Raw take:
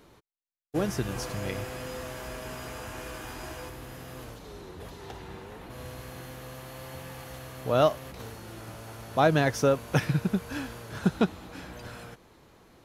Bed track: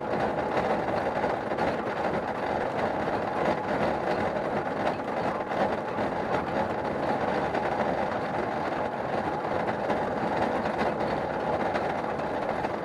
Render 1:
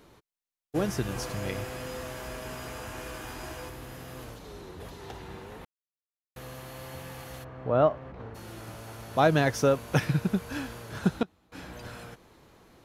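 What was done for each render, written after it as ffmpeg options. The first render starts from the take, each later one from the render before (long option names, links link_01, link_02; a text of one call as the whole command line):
ffmpeg -i in.wav -filter_complex "[0:a]asplit=3[link_01][link_02][link_03];[link_01]afade=type=out:start_time=7.43:duration=0.02[link_04];[link_02]lowpass=1500,afade=type=in:start_time=7.43:duration=0.02,afade=type=out:start_time=8.34:duration=0.02[link_05];[link_03]afade=type=in:start_time=8.34:duration=0.02[link_06];[link_04][link_05][link_06]amix=inputs=3:normalize=0,asplit=5[link_07][link_08][link_09][link_10][link_11];[link_07]atrim=end=5.65,asetpts=PTS-STARTPTS,afade=type=out:start_time=5.646:duration=0.004:curve=hsin[link_12];[link_08]atrim=start=5.65:end=6.36,asetpts=PTS-STARTPTS,volume=0[link_13];[link_09]atrim=start=6.36:end=11.23,asetpts=PTS-STARTPTS,afade=type=in:duration=0.004:curve=hsin,afade=type=out:start_time=4.59:duration=0.28:curve=log:silence=0.0841395[link_14];[link_10]atrim=start=11.23:end=11.52,asetpts=PTS-STARTPTS,volume=-21.5dB[link_15];[link_11]atrim=start=11.52,asetpts=PTS-STARTPTS,afade=type=in:duration=0.28:curve=log:silence=0.0841395[link_16];[link_12][link_13][link_14][link_15][link_16]concat=n=5:v=0:a=1" out.wav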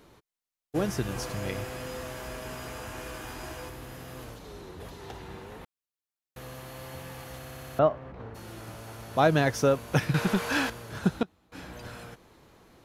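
ffmpeg -i in.wav -filter_complex "[0:a]asettb=1/sr,asplit=3[link_01][link_02][link_03];[link_01]atrim=end=10.144[link_04];[link_02]atrim=start=10.14:end=10.7,asetpts=PTS-STARTPTS,afade=type=in:duration=0.004:curve=qsin,afade=type=out:start_time=0.556:duration=0.004:curve=qsin,asplit=2[link_05][link_06];[link_06]highpass=frequency=720:poles=1,volume=20dB,asoftclip=type=tanh:threshold=-14.5dB[link_07];[link_05][link_07]amix=inputs=2:normalize=0,lowpass=frequency=5600:poles=1,volume=-6dB[link_08];[link_03]atrim=start=10.696[link_09];[link_04][link_08]acrossfade=duration=0.004:curve1=hsin:curve2=qsin[link_10];[link_10][link_09]acrossfade=duration=0.004:curve1=qsin:curve2=hsin,asplit=8[link_11][link_12][link_13][link_14][link_15][link_16][link_17][link_18];[link_11]atrim=end=7.432[link_19];[link_12]atrim=start=7.368:end=7.432[link_20];[link_13]atrim=start=7.368:end=7.432[link_21];[link_14]atrim=start=7.368:end=7.432[link_22];[link_15]atrim=start=7.368:end=7.432[link_23];[link_16]atrim=start=7.368:end=7.432[link_24];[link_17]atrim=start=7.368:end=7.432[link_25];[link_18]atrim=start=7.788[link_26];[link_19][link_20]acrossfade=duration=0.004:curve1=hsin:curve2=hsin[link_27];[link_27][link_21]acrossfade=duration=0.004:curve1=hsin:curve2=hsin[link_28];[link_28][link_22]acrossfade=duration=0.004:curve1=hsin:curve2=hsin[link_29];[link_29][link_23]acrossfade=duration=0.004:curve1=hsin:curve2=hsin[link_30];[link_30][link_24]acrossfade=duration=0.004:curve1=hsin:curve2=hsin[link_31];[link_31][link_25]acrossfade=duration=0.004:curve1=hsin:curve2=hsin[link_32];[link_32][link_26]acrossfade=duration=0.004:curve1=hsin:curve2=hsin" out.wav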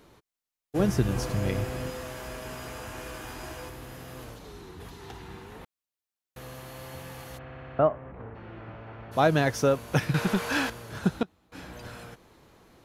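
ffmpeg -i in.wav -filter_complex "[0:a]asettb=1/sr,asplit=3[link_01][link_02][link_03];[link_01]atrim=end=0.794[link_04];[link_02]atrim=start=0.79:end=1.9,asetpts=PTS-STARTPTS,afade=type=in:duration=0.004:curve=qsin,afade=type=out:start_time=1.106:duration=0.004:curve=qsin,lowshelf=frequency=410:gain=8[link_05];[link_03]atrim=start=1.896[link_06];[link_04][link_05]acrossfade=duration=0.004:curve1=hsin:curve2=qsin[link_07];[link_07][link_06]acrossfade=duration=0.004:curve1=qsin:curve2=hsin,asettb=1/sr,asplit=3[link_08][link_09][link_10];[link_08]atrim=end=4.504[link_11];[link_09]atrim=start=4.5:end=5.55,asetpts=PTS-STARTPTS,afade=type=in:duration=0.004:curve=qsin,afade=type=out:start_time=1.046:duration=0.004:curve=qsin,equalizer=frequency=570:width_type=o:width=0.3:gain=-13.5[link_12];[link_10]atrim=start=5.546[link_13];[link_11][link_12]acrossfade=duration=0.004:curve1=hsin:curve2=qsin[link_14];[link_14][link_13]acrossfade=duration=0.004:curve1=qsin:curve2=hsin,asplit=3[link_15][link_16][link_17];[link_15]afade=type=out:start_time=7.37:duration=0.02[link_18];[link_16]lowpass=frequency=2600:width=0.5412,lowpass=frequency=2600:width=1.3066,afade=type=in:start_time=7.37:duration=0.02,afade=type=out:start_time=9.11:duration=0.02[link_19];[link_17]afade=type=in:start_time=9.11:duration=0.02[link_20];[link_18][link_19][link_20]amix=inputs=3:normalize=0" out.wav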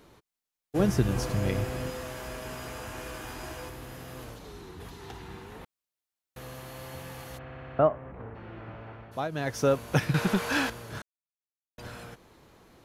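ffmpeg -i in.wav -filter_complex "[0:a]asplit=5[link_01][link_02][link_03][link_04][link_05];[link_01]atrim=end=9.29,asetpts=PTS-STARTPTS,afade=type=out:start_time=8.86:duration=0.43:silence=0.199526[link_06];[link_02]atrim=start=9.29:end=9.3,asetpts=PTS-STARTPTS,volume=-14dB[link_07];[link_03]atrim=start=9.3:end=11.02,asetpts=PTS-STARTPTS,afade=type=in:duration=0.43:silence=0.199526,afade=type=out:start_time=1.716:duration=0.004:curve=hsin[link_08];[link_04]atrim=start=11.02:end=11.78,asetpts=PTS-STARTPTS,volume=0[link_09];[link_05]atrim=start=11.78,asetpts=PTS-STARTPTS,afade=type=in:duration=0.004:curve=hsin[link_10];[link_06][link_07][link_08][link_09][link_10]concat=n=5:v=0:a=1" out.wav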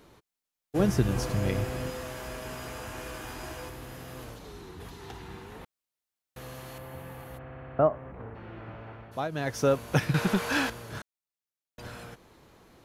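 ffmpeg -i in.wav -filter_complex "[0:a]asettb=1/sr,asplit=3[link_01][link_02][link_03];[link_01]atrim=end=6.784[link_04];[link_02]atrim=start=6.78:end=7.93,asetpts=PTS-STARTPTS,afade=type=in:duration=0.004:curve=qsin,afade=type=out:start_time=1.146:duration=0.004:curve=qsin,equalizer=frequency=5600:width=0.7:gain=-13.5[link_05];[link_03]atrim=start=7.926[link_06];[link_04][link_05]acrossfade=duration=0.004:curve1=hsin:curve2=qsin[link_07];[link_07][link_06]acrossfade=duration=0.004:curve1=qsin:curve2=hsin" out.wav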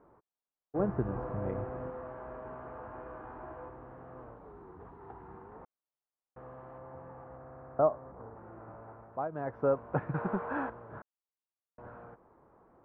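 ffmpeg -i in.wav -af "lowpass=frequency=1200:width=0.5412,lowpass=frequency=1200:width=1.3066,lowshelf=frequency=360:gain=-10.5" out.wav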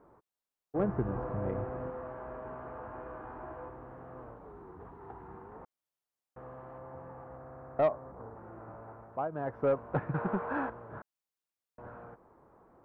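ffmpeg -i in.wav -af "aeval=exprs='0.188*(cos(1*acos(clip(val(0)/0.188,-1,1)))-cos(1*PI/2))+0.00596*(cos(5*acos(clip(val(0)/0.188,-1,1)))-cos(5*PI/2))':channel_layout=same,asoftclip=type=tanh:threshold=-16.5dB" out.wav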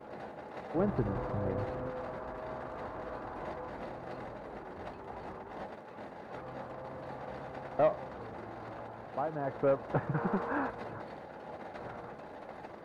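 ffmpeg -i in.wav -i bed.wav -filter_complex "[1:a]volume=-17.5dB[link_01];[0:a][link_01]amix=inputs=2:normalize=0" out.wav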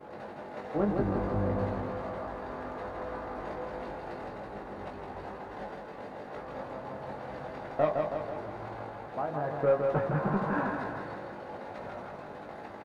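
ffmpeg -i in.wav -filter_complex "[0:a]asplit=2[link_01][link_02];[link_02]adelay=20,volume=-4dB[link_03];[link_01][link_03]amix=inputs=2:normalize=0,aecho=1:1:162|324|486|648|810|972|1134|1296:0.596|0.34|0.194|0.11|0.0629|0.0358|0.0204|0.0116" out.wav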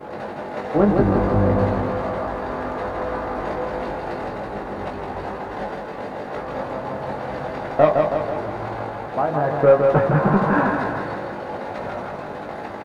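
ffmpeg -i in.wav -af "volume=12dB" out.wav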